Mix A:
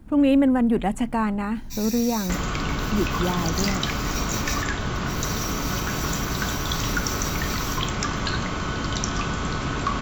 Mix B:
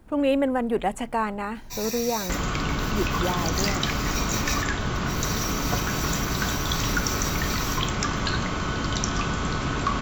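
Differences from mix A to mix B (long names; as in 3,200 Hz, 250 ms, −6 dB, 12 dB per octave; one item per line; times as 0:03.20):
speech: add low shelf with overshoot 340 Hz −6.5 dB, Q 1.5
first sound: remove guitar amp tone stack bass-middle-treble 10-0-10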